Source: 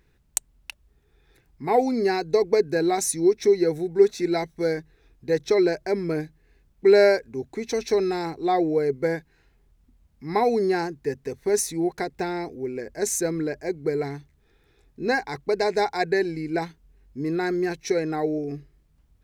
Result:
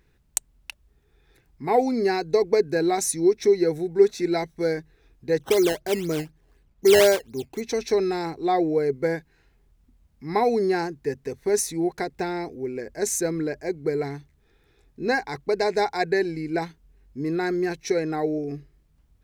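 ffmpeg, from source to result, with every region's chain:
ffmpeg -i in.wav -filter_complex "[0:a]asettb=1/sr,asplit=3[link_01][link_02][link_03];[link_01]atrim=end=5.414[link_04];[link_02]atrim=start=5.41:end=7.61,asetpts=PTS-STARTPTS,afade=type=in:duration=0.004:curve=qsin,afade=type=out:start_time=2.196:duration=0.004:curve=qsin,highshelf=frequency=5200:gain=-7.5,acrusher=samples=13:mix=1:aa=0.000001:lfo=1:lforange=13:lforate=4[link_05];[link_03]atrim=start=7.606[link_06];[link_04][link_05]acrossfade=duration=0.004:curve1=hsin:curve2=qsin[link_07];[link_07][link_06]acrossfade=duration=0.004:curve1=qsin:curve2=hsin" out.wav

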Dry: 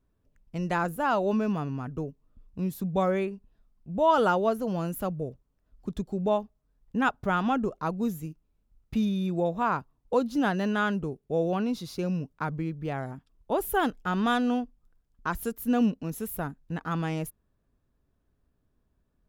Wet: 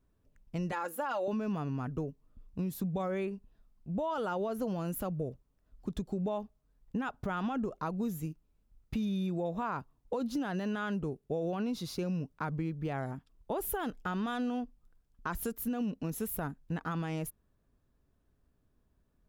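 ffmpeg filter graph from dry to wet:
ffmpeg -i in.wav -filter_complex "[0:a]asettb=1/sr,asplit=3[link_01][link_02][link_03];[link_01]atrim=end=0.724[link_04];[link_02]atrim=start=0.72:end=1.28,asetpts=PTS-STARTPTS,afade=type=in:duration=0.004:curve=qsin,afade=type=out:start_time=0.556:duration=0.004:curve=qsin,highpass=440,aecho=1:1:3.6:0.66,atrim=end_sample=24696[link_05];[link_03]atrim=start=1.276[link_06];[link_04][link_05]acrossfade=duration=0.004:curve1=hsin:curve2=qsin[link_07];[link_07][link_06]acrossfade=duration=0.004:curve1=qsin:curve2=hsin,alimiter=limit=-23dB:level=0:latency=1:release=56,acompressor=threshold=-30dB:ratio=6" out.wav

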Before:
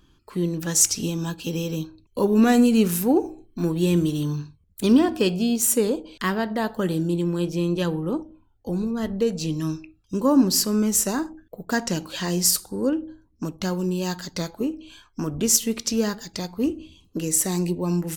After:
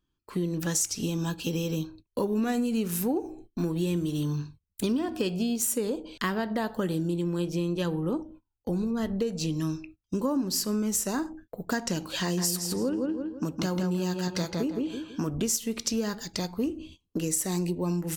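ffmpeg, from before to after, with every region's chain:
ffmpeg -i in.wav -filter_complex "[0:a]asettb=1/sr,asplit=3[link_01][link_02][link_03];[link_01]atrim=end=12.214[link_04];[link_02]atrim=start=12.21:end=15.29,asetpts=PTS-STARTPTS,afade=type=in:duration=0.004:curve=qsin,afade=type=out:start_time=3.076:duration=0.004:curve=qsin,highpass=42,asplit=2[link_05][link_06];[link_06]adelay=164,lowpass=frequency=3300:poles=1,volume=-3dB,asplit=2[link_07][link_08];[link_08]adelay=164,lowpass=frequency=3300:poles=1,volume=0.35,asplit=2[link_09][link_10];[link_10]adelay=164,lowpass=frequency=3300:poles=1,volume=0.35,asplit=2[link_11][link_12];[link_12]adelay=164,lowpass=frequency=3300:poles=1,volume=0.35,asplit=2[link_13][link_14];[link_14]adelay=164,lowpass=frequency=3300:poles=1,volume=0.35[link_15];[link_05][link_07][link_09][link_11][link_13][link_15]amix=inputs=6:normalize=0,atrim=end_sample=135828[link_16];[link_03]atrim=start=15.286[link_17];[link_04][link_16]acrossfade=duration=0.004:curve1=hsin:curve2=qsin[link_18];[link_18][link_17]acrossfade=duration=0.004:curve1=qsin:curve2=hsin,agate=range=-21dB:threshold=-46dB:ratio=16:detection=peak,acompressor=threshold=-25dB:ratio=6" out.wav

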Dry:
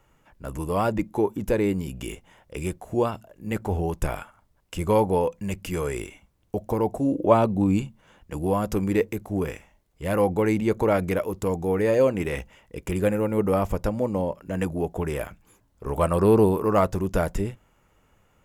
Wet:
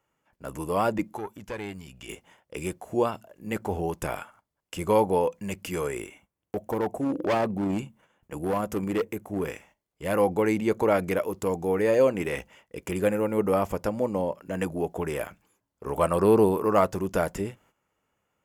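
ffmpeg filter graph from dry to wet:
ffmpeg -i in.wav -filter_complex "[0:a]asettb=1/sr,asplit=3[link_01][link_02][link_03];[link_01]atrim=end=1.174[link_04];[link_02]atrim=start=1.17:end=2.09,asetpts=PTS-STARTPTS,afade=type=in:duration=0.004:curve=qsin,afade=type=out:start_time=0.916:duration=0.004:curve=qsin,acrossover=split=7200[link_05][link_06];[link_06]acompressor=threshold=-58dB:ratio=4:attack=1:release=60[link_07];[link_05][link_07]amix=inputs=2:normalize=0,aeval=exprs='(tanh(5.62*val(0)+0.55)-tanh(0.55))/5.62':channel_layout=same,equalizer=frequency=330:width_type=o:width=2.6:gain=-10.5[link_08];[link_03]atrim=start=2.086[link_09];[link_04][link_08]acrossfade=duration=0.004:curve1=hsin:curve2=qsin[link_10];[link_10][link_09]acrossfade=duration=0.004:curve1=qsin:curve2=hsin,asettb=1/sr,asplit=3[link_11][link_12][link_13];[link_11]atrim=end=5.874[link_14];[link_12]atrim=start=5.87:end=9.45,asetpts=PTS-STARTPTS,afade=type=in:duration=0.004:curve=qsin,afade=type=out:start_time=3.576:duration=0.004:curve=qsin,equalizer=frequency=4600:width_type=o:width=0.77:gain=-7,asoftclip=type=hard:threshold=-19.5dB,tremolo=f=30:d=0.182[link_15];[link_13]atrim=start=9.446[link_16];[link_14][link_15]acrossfade=duration=0.004:curve1=hsin:curve2=qsin[link_17];[link_17][link_16]acrossfade=duration=0.004:curve1=qsin:curve2=hsin,agate=range=-11dB:threshold=-53dB:ratio=16:detection=peak,highpass=frequency=220:poles=1,bandreject=frequency=3800:width=18" out.wav

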